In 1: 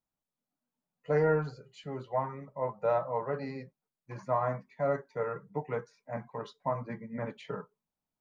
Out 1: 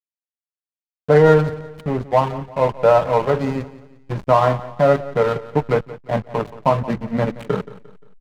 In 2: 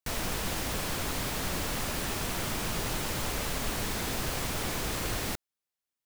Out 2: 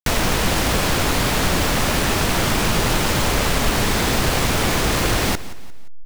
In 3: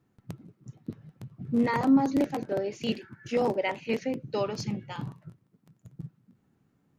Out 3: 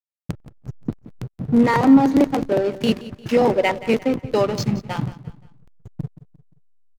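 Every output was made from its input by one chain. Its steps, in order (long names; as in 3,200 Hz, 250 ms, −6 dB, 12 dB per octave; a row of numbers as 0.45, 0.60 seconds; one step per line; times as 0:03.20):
in parallel at +1 dB: downward compressor, threshold −37 dBFS
on the sum: slack as between gear wheels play −31.5 dBFS
repeating echo 175 ms, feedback 40%, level −17 dB
loudness normalisation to −19 LKFS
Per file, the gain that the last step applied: +13.0, +11.0, +8.0 decibels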